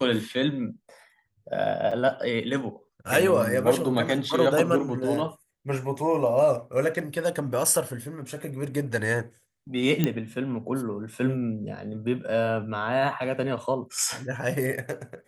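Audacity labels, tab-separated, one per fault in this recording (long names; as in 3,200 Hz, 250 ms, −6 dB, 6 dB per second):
1.910000	1.920000	drop-out 5.3 ms
10.040000	10.040000	click −9 dBFS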